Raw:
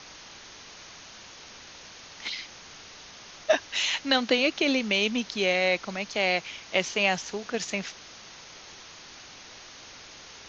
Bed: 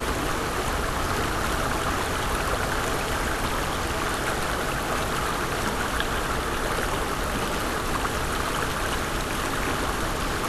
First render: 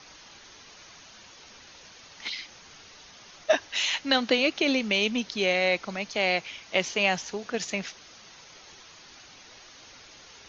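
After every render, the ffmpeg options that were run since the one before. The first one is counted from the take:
-af "afftdn=nr=6:nf=-47"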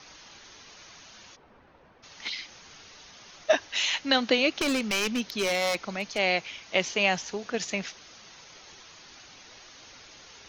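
-filter_complex "[0:a]asplit=3[s0][s1][s2];[s0]afade=t=out:st=1.35:d=0.02[s3];[s1]lowpass=1100,afade=t=in:st=1.35:d=0.02,afade=t=out:st=2.02:d=0.02[s4];[s2]afade=t=in:st=2.02:d=0.02[s5];[s3][s4][s5]amix=inputs=3:normalize=0,asplit=3[s6][s7][s8];[s6]afade=t=out:st=4.52:d=0.02[s9];[s7]aeval=exprs='0.1*(abs(mod(val(0)/0.1+3,4)-2)-1)':c=same,afade=t=in:st=4.52:d=0.02,afade=t=out:st=6.17:d=0.02[s10];[s8]afade=t=in:st=6.17:d=0.02[s11];[s9][s10][s11]amix=inputs=3:normalize=0"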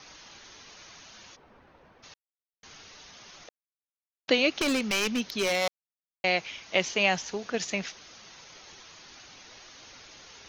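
-filter_complex "[0:a]asplit=7[s0][s1][s2][s3][s4][s5][s6];[s0]atrim=end=2.14,asetpts=PTS-STARTPTS,afade=t=out:st=2.136:d=0.004:c=hsin[s7];[s1]atrim=start=2.14:end=2.63,asetpts=PTS-STARTPTS,volume=0[s8];[s2]atrim=start=2.63:end=3.49,asetpts=PTS-STARTPTS,afade=t=in:d=0.004:c=hsin,afade=t=out:st=0.856:d=0.004:c=hsin[s9];[s3]atrim=start=3.49:end=4.28,asetpts=PTS-STARTPTS,volume=0[s10];[s4]atrim=start=4.28:end=5.68,asetpts=PTS-STARTPTS,afade=t=in:d=0.004:c=hsin,afade=t=out:st=1.396:d=0.004:c=hsin[s11];[s5]atrim=start=5.68:end=6.24,asetpts=PTS-STARTPTS,volume=0[s12];[s6]atrim=start=6.24,asetpts=PTS-STARTPTS,afade=t=in:d=0.004:c=hsin[s13];[s7][s8][s9][s10][s11][s12][s13]concat=n=7:v=0:a=1"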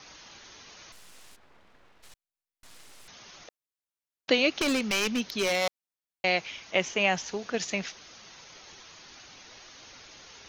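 -filter_complex "[0:a]asettb=1/sr,asplit=3[s0][s1][s2];[s0]atrim=end=0.924[s3];[s1]atrim=start=0.92:end=3.08,asetpts=PTS-STARTPTS,afade=t=in:d=0.004:c=qsin,afade=t=out:st=2.156:d=0.004:c=qsin,aeval=exprs='abs(val(0))':c=same[s4];[s2]atrim=start=3.076[s5];[s3][s4]acrossfade=d=0.004:c1=hsin:c2=qsin[s6];[s6][s5]acrossfade=d=0.004:c1=qsin:c2=hsin,asettb=1/sr,asplit=3[s7][s8][s9];[s7]atrim=end=6.714[s10];[s8]atrim=start=6.71:end=7.17,asetpts=PTS-STARTPTS,afade=t=in:d=0.004:c=qsin,afade=t=out:st=0.456:d=0.004:c=qsin,equalizer=f=4400:t=o:w=0.58:g=-8.5[s11];[s9]atrim=start=7.166[s12];[s10][s11]acrossfade=d=0.004:c1=hsin:c2=qsin[s13];[s13][s12]acrossfade=d=0.004:c1=qsin:c2=hsin"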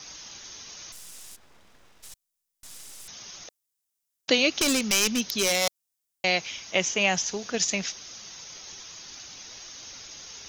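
-af "bass=f=250:g=3,treble=f=4000:g=13,bandreject=f=4300:w=20"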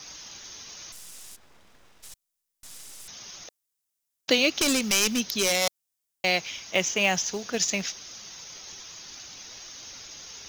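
-af "acrusher=bits=6:mode=log:mix=0:aa=0.000001"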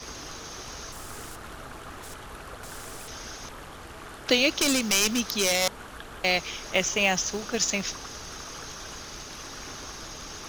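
-filter_complex "[1:a]volume=0.158[s0];[0:a][s0]amix=inputs=2:normalize=0"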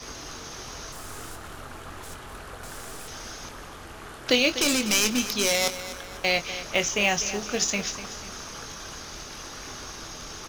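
-filter_complex "[0:a]asplit=2[s0][s1];[s1]adelay=24,volume=0.335[s2];[s0][s2]amix=inputs=2:normalize=0,aecho=1:1:247|494|741|988:0.224|0.0985|0.0433|0.0191"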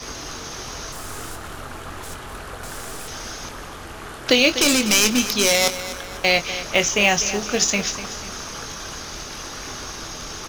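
-af "volume=2,alimiter=limit=0.708:level=0:latency=1"

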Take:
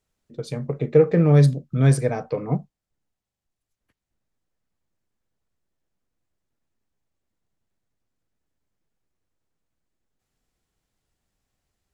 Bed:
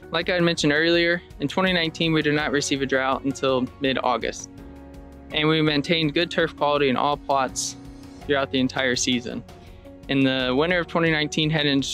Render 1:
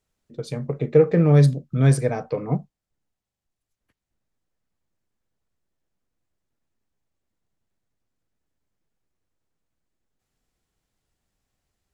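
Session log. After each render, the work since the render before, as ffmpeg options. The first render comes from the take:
-af anull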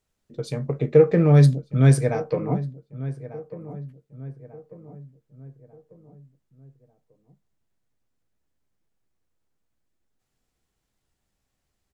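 -filter_complex "[0:a]asplit=2[s0][s1];[s1]adelay=15,volume=0.224[s2];[s0][s2]amix=inputs=2:normalize=0,asplit=2[s3][s4];[s4]adelay=1194,lowpass=f=1300:p=1,volume=0.178,asplit=2[s5][s6];[s6]adelay=1194,lowpass=f=1300:p=1,volume=0.46,asplit=2[s7][s8];[s8]adelay=1194,lowpass=f=1300:p=1,volume=0.46,asplit=2[s9][s10];[s10]adelay=1194,lowpass=f=1300:p=1,volume=0.46[s11];[s3][s5][s7][s9][s11]amix=inputs=5:normalize=0"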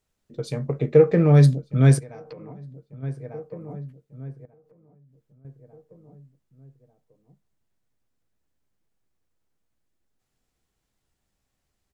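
-filter_complex "[0:a]asplit=3[s0][s1][s2];[s0]afade=t=out:st=1.98:d=0.02[s3];[s1]acompressor=threshold=0.0158:ratio=12:attack=3.2:release=140:knee=1:detection=peak,afade=t=in:st=1.98:d=0.02,afade=t=out:st=3.02:d=0.02[s4];[s2]afade=t=in:st=3.02:d=0.02[s5];[s3][s4][s5]amix=inputs=3:normalize=0,asettb=1/sr,asplit=3[s6][s7][s8];[s6]atrim=end=4.454[s9];[s7]atrim=start=4.45:end=5.45,asetpts=PTS-STARTPTS,afade=t=in:d=0.004:c=qsin,afade=t=out:st=0.996:d=0.004:c=qsin,acompressor=threshold=0.00224:ratio=12:attack=3.2:release=140:knee=1:detection=peak[s10];[s8]atrim=start=5.446[s11];[s9][s10]acrossfade=d=0.004:c1=hsin:c2=qsin[s12];[s12][s11]acrossfade=d=0.004:c1=qsin:c2=hsin"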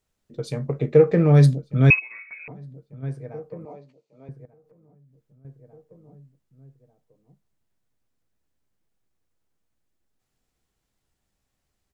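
-filter_complex "[0:a]asettb=1/sr,asplit=3[s0][s1][s2];[s0]atrim=end=1.904[s3];[s1]atrim=start=1.9:end=2.48,asetpts=PTS-STARTPTS,afade=t=in:d=0.004:c=qsin,afade=t=out:st=0.576:d=0.004:c=qsin,lowpass=f=2300:t=q:w=0.5098,lowpass=f=2300:t=q:w=0.6013,lowpass=f=2300:t=q:w=0.9,lowpass=f=2300:t=q:w=2.563,afreqshift=-2700[s4];[s2]atrim=start=2.476[s5];[s3][s4]acrossfade=d=0.004:c1=hsin:c2=qsin[s6];[s6][s5]acrossfade=d=0.004:c1=qsin:c2=hsin,asettb=1/sr,asplit=3[s7][s8][s9];[s7]atrim=end=3.654[s10];[s8]atrim=start=3.65:end=4.29,asetpts=PTS-STARTPTS,afade=t=in:d=0.004:c=qsin,afade=t=out:st=0.636:d=0.004:c=qsin,highpass=380,equalizer=f=600:t=q:w=4:g=5,equalizer=f=920:t=q:w=4:g=5,equalizer=f=1600:t=q:w=4:g=-10,equalizer=f=2500:t=q:w=4:g=7,equalizer=f=4400:t=q:w=4:g=9,equalizer=f=6300:t=q:w=4:g=4,lowpass=f=7800:w=0.5412,lowpass=f=7800:w=1.3066[s11];[s9]atrim=start=4.286[s12];[s10][s11]acrossfade=d=0.004:c1=hsin:c2=qsin[s13];[s13][s12]acrossfade=d=0.004:c1=qsin:c2=hsin"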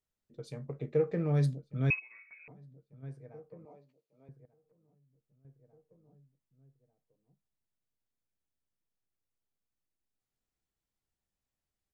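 -af "volume=0.2"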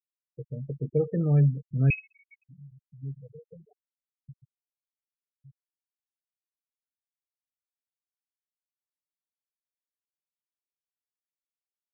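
-af "afftfilt=real='re*gte(hypot(re,im),0.0178)':imag='im*gte(hypot(re,im),0.0178)':win_size=1024:overlap=0.75,lowshelf=f=200:g=11.5"

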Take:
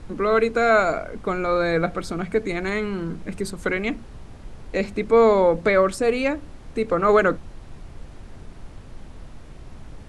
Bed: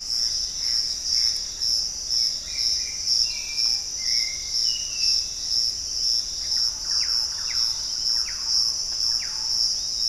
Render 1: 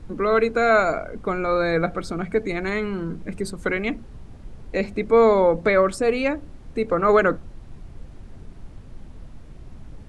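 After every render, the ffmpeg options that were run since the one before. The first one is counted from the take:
-af "afftdn=nr=6:nf=-42"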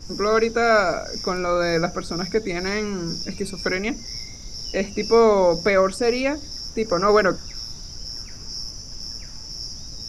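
-filter_complex "[1:a]volume=0.266[s0];[0:a][s0]amix=inputs=2:normalize=0"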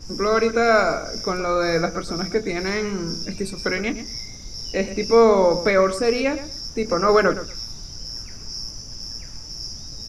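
-filter_complex "[0:a]asplit=2[s0][s1];[s1]adelay=26,volume=0.237[s2];[s0][s2]amix=inputs=2:normalize=0,asplit=2[s3][s4];[s4]adelay=118,lowpass=f=3400:p=1,volume=0.237,asplit=2[s5][s6];[s6]adelay=118,lowpass=f=3400:p=1,volume=0.18[s7];[s3][s5][s7]amix=inputs=3:normalize=0"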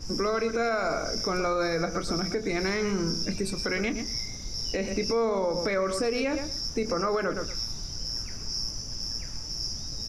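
-af "acompressor=threshold=0.1:ratio=6,alimiter=limit=0.119:level=0:latency=1:release=71"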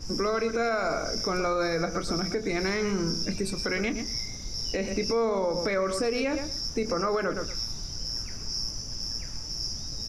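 -af anull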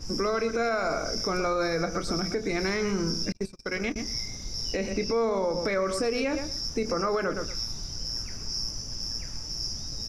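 -filter_complex "[0:a]asettb=1/sr,asplit=3[s0][s1][s2];[s0]atrim=end=3.324[s3];[s1]atrim=start=3.32:end=3.96,asetpts=PTS-STARTPTS,afade=t=in:d=0.004:c=qsin,afade=t=out:st=0.636:d=0.004:c=qsin,agate=range=0.0112:threshold=0.0355:ratio=16:release=100:detection=peak[s4];[s2]atrim=start=3.956[s5];[s3][s4]acrossfade=d=0.004:c1=hsin:c2=qsin[s6];[s6][s5]acrossfade=d=0.004:c1=qsin:c2=hsin,asettb=1/sr,asplit=3[s7][s8][s9];[s7]atrim=end=4.874[s10];[s8]atrim=start=4.87:end=5.65,asetpts=PTS-STARTPTS,afade=t=in:d=0.004:c=qsin,afade=t=out:st=0.776:d=0.004:c=qsin,acrossover=split=5600[s11][s12];[s12]acompressor=threshold=0.00447:ratio=4:attack=1:release=60[s13];[s11][s13]amix=inputs=2:normalize=0[s14];[s9]atrim=start=5.646[s15];[s10][s14]acrossfade=d=0.004:c1=hsin:c2=qsin[s16];[s16][s15]acrossfade=d=0.004:c1=qsin:c2=hsin"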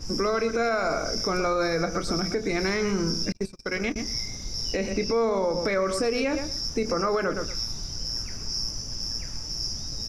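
-af "volume=1.26"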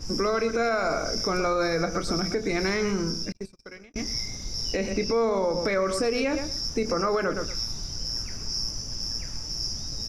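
-filter_complex "[0:a]asplit=2[s0][s1];[s0]atrim=end=3.94,asetpts=PTS-STARTPTS,afade=t=out:st=2.84:d=1.1[s2];[s1]atrim=start=3.94,asetpts=PTS-STARTPTS,afade=t=in:d=0.004:c=hsin[s3];[s2][s3]concat=n=2:v=0:a=1"

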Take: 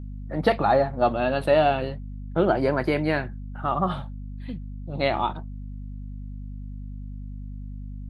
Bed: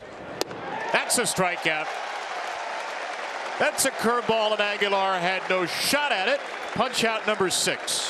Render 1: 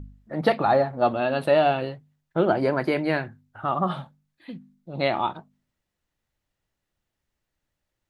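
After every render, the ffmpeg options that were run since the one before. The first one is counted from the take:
-af "bandreject=f=50:t=h:w=4,bandreject=f=100:t=h:w=4,bandreject=f=150:t=h:w=4,bandreject=f=200:t=h:w=4,bandreject=f=250:t=h:w=4"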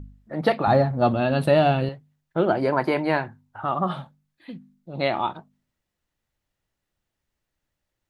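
-filter_complex "[0:a]asettb=1/sr,asplit=3[s0][s1][s2];[s0]atrim=end=0.674[s3];[s1]atrim=start=0.67:end=1.89,asetpts=PTS-STARTPTS,afade=t=in:d=0.004:c=qsin,afade=t=out:st=1.216:d=0.004:c=qsin,bass=f=250:g=12,treble=f=4000:g=5[s4];[s2]atrim=start=1.886[s5];[s3][s4]acrossfade=d=0.004:c1=hsin:c2=qsin[s6];[s6][s5]acrossfade=d=0.004:c1=qsin:c2=hsin,asettb=1/sr,asplit=3[s7][s8][s9];[s7]atrim=end=2.724[s10];[s8]atrim=start=2.72:end=3.65,asetpts=PTS-STARTPTS,afade=t=in:d=0.004:c=qsin,afade=t=out:st=0.926:d=0.004:c=qsin,equalizer=f=920:w=2.4:g=10[s11];[s9]atrim=start=3.646[s12];[s10][s11]acrossfade=d=0.004:c1=hsin:c2=qsin[s13];[s13][s12]acrossfade=d=0.004:c1=qsin:c2=hsin"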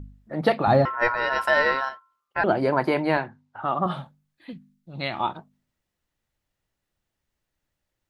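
-filter_complex "[0:a]asettb=1/sr,asplit=3[s0][s1][s2];[s0]atrim=end=0.854[s3];[s1]atrim=start=0.85:end=2.44,asetpts=PTS-STARTPTS,afade=t=in:d=0.004:c=qsin,afade=t=out:st=1.586:d=0.004:c=qsin,aeval=exprs='val(0)*sin(2*PI*1200*n/s)':c=same[s4];[s2]atrim=start=2.436[s5];[s3][s4]acrossfade=d=0.004:c1=hsin:c2=qsin[s6];[s6][s5]acrossfade=d=0.004:c1=qsin:c2=hsin,asettb=1/sr,asplit=3[s7][s8][s9];[s7]atrim=end=3.174[s10];[s8]atrim=start=3.17:end=3.86,asetpts=PTS-STARTPTS,afade=t=in:d=0.004:c=qsin,afade=t=out:st=0.686:d=0.004:c=qsin,highpass=150,lowpass=6200[s11];[s9]atrim=start=3.856[s12];[s10][s11]acrossfade=d=0.004:c1=hsin:c2=qsin[s13];[s13][s12]acrossfade=d=0.004:c1=qsin:c2=hsin,asettb=1/sr,asplit=3[s14][s15][s16];[s14]atrim=end=4.534[s17];[s15]atrim=start=4.53:end=5.2,asetpts=PTS-STARTPTS,afade=t=in:d=0.004:c=qsin,afade=t=out:st=0.666:d=0.004:c=qsin,equalizer=f=520:w=0.66:g=-10.5[s18];[s16]atrim=start=5.196[s19];[s17][s18]acrossfade=d=0.004:c1=hsin:c2=qsin[s20];[s20][s19]acrossfade=d=0.004:c1=qsin:c2=hsin"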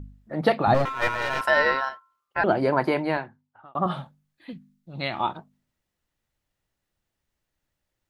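-filter_complex "[0:a]asettb=1/sr,asplit=3[s0][s1][s2];[s0]atrim=end=0.744[s3];[s1]atrim=start=0.74:end=1.41,asetpts=PTS-STARTPTS,afade=t=in:d=0.004:c=qsin,afade=t=out:st=0.666:d=0.004:c=qsin,aeval=exprs='clip(val(0),-1,0.0299)':c=same[s4];[s2]atrim=start=1.406[s5];[s3][s4]acrossfade=d=0.004:c1=hsin:c2=qsin[s6];[s6][s5]acrossfade=d=0.004:c1=qsin:c2=hsin,asplit=2[s7][s8];[s7]atrim=end=3.75,asetpts=PTS-STARTPTS,afade=t=out:st=2.84:d=0.91[s9];[s8]atrim=start=3.75,asetpts=PTS-STARTPTS,afade=t=in:d=0.004:c=hsin[s10];[s9][s10]concat=n=2:v=0:a=1"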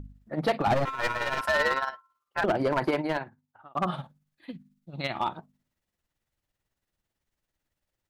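-af "tremolo=f=18:d=0.54,asoftclip=type=hard:threshold=0.112"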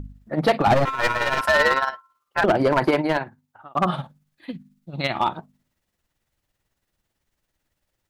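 -af "volume=2.24"

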